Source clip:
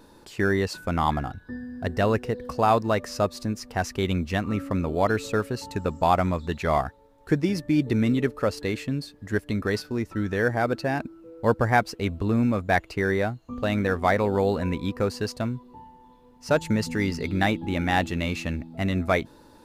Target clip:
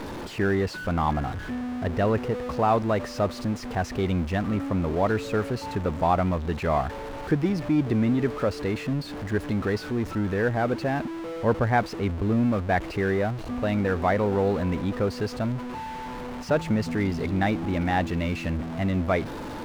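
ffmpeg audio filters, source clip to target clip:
-af "aeval=exprs='val(0)+0.5*0.0473*sgn(val(0))':c=same,lowpass=f=1.8k:p=1,volume=-2dB"

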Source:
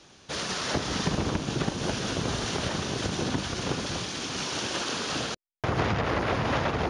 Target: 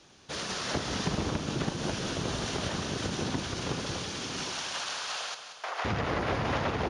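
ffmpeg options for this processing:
-filter_complex "[0:a]asettb=1/sr,asplit=3[a][b][c];[a]atrim=end=4.524[d];[b]atrim=start=4.52:end=5.85,asetpts=PTS-STARTPTS,afade=t=in:d=0.004:c=qsin,afade=t=out:st=1.326:d=0.004:c=qsin,highpass=f=640:w=0.5412,highpass=f=640:w=1.3066[e];[c]atrim=start=5.846[f];[d][e]acrossfade=d=0.004:c1=hsin:c2=qsin[g];[g][f]acrossfade=d=0.004:c1=qsin:c2=hsin,asplit=2[h][i];[i]aecho=0:1:183|366|549|732|915|1098|1281:0.299|0.179|0.107|0.0645|0.0387|0.0232|0.0139[j];[h][j]amix=inputs=2:normalize=0,volume=-3.5dB"

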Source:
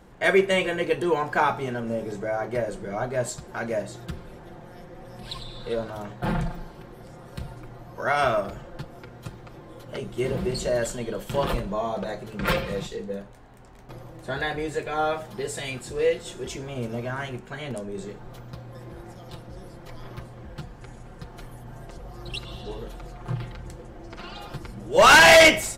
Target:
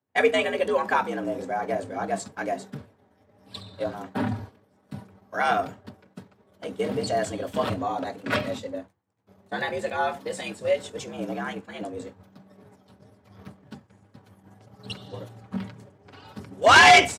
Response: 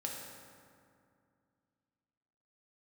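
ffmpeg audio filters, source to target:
-filter_complex "[0:a]atempo=1.5,bandreject=f=50:t=h:w=6,bandreject=f=100:t=h:w=6,bandreject=f=150:t=h:w=6,afreqshift=72,agate=range=-33dB:threshold=-32dB:ratio=3:detection=peak,acrossover=split=9300[a][b];[b]acompressor=threshold=-56dB:ratio=4:attack=1:release=60[c];[a][c]amix=inputs=2:normalize=0"

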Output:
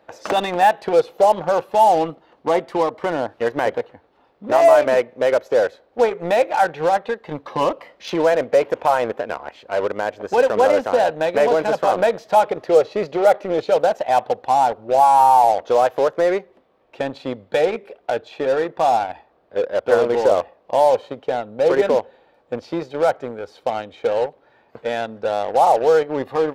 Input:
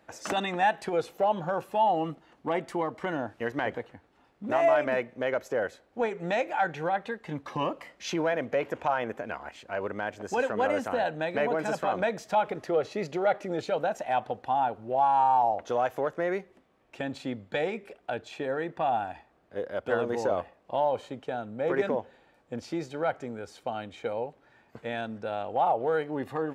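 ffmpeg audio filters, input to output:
-filter_complex "[0:a]equalizer=f=500:t=o:w=1:g=9,equalizer=f=1k:t=o:w=1:g=5,equalizer=f=4k:t=o:w=1:g=6,equalizer=f=8k:t=o:w=1:g=-8,asplit=2[a][b];[b]acrusher=bits=3:mix=0:aa=0.5,volume=-6.5dB[c];[a][c]amix=inputs=2:normalize=0"

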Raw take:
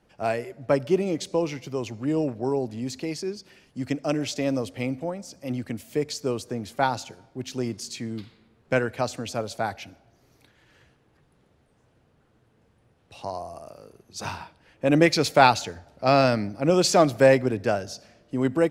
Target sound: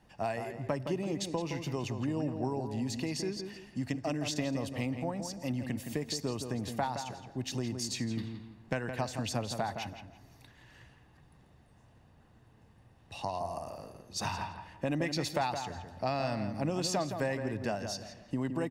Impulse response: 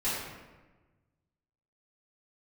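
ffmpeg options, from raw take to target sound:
-filter_complex "[0:a]aecho=1:1:1.1:0.42,acompressor=threshold=-31dB:ratio=5,asplit=2[a][b];[b]adelay=167,lowpass=f=2.6k:p=1,volume=-7dB,asplit=2[c][d];[d]adelay=167,lowpass=f=2.6k:p=1,volume=0.32,asplit=2[e][f];[f]adelay=167,lowpass=f=2.6k:p=1,volume=0.32,asplit=2[g][h];[h]adelay=167,lowpass=f=2.6k:p=1,volume=0.32[i];[c][e][g][i]amix=inputs=4:normalize=0[j];[a][j]amix=inputs=2:normalize=0"

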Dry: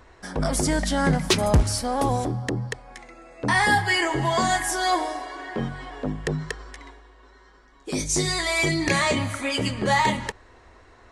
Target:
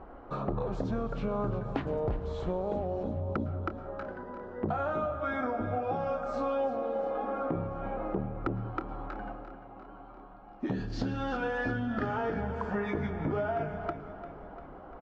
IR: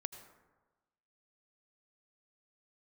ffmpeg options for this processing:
-filter_complex "[0:a]lowpass=1.1k,tiltshelf=f=700:g=-5,acompressor=threshold=-36dB:ratio=10,aecho=1:1:257|514|771|1028|1285|1542:0.211|0.123|0.0711|0.0412|0.0239|0.0139,asplit=2[a][b];[1:a]atrim=start_sample=2205[c];[b][c]afir=irnorm=-1:irlink=0,volume=6dB[d];[a][d]amix=inputs=2:normalize=0,asetrate=32667,aresample=44100,volume=-1.5dB"

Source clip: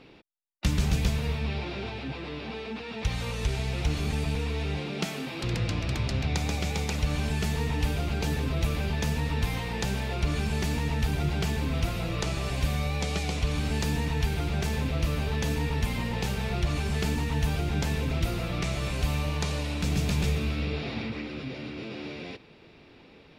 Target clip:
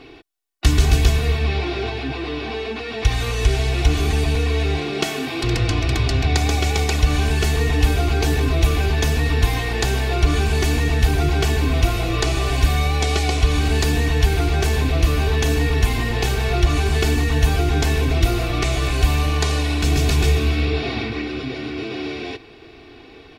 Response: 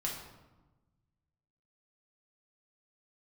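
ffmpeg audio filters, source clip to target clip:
-af "aecho=1:1:2.7:0.77,volume=8dB"

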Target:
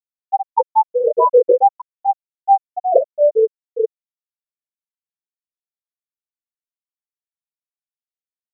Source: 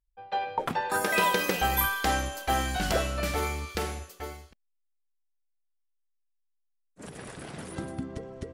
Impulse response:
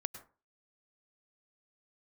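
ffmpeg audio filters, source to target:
-filter_complex "[0:a]equalizer=f=3.1k:w=1.9:g=-13.5,asplit=2[a][b];[b]adelay=39,volume=-4.5dB[c];[a][c]amix=inputs=2:normalize=0[d];[1:a]atrim=start_sample=2205,atrim=end_sample=4410[e];[d][e]afir=irnorm=-1:irlink=0,flanger=delay=16:depth=7.9:speed=0.48,apsyclip=22.5dB,equalizer=f=125:t=o:w=1:g=5,equalizer=f=500:t=o:w=1:g=11,equalizer=f=1k:t=o:w=1:g=5,equalizer=f=4k:t=o:w=1:g=-8,equalizer=f=8k:t=o:w=1:g=-4,afftfilt=real='re*gte(hypot(re,im),5.62)':imag='im*gte(hypot(re,im),5.62)':win_size=1024:overlap=0.75,volume=-9dB"

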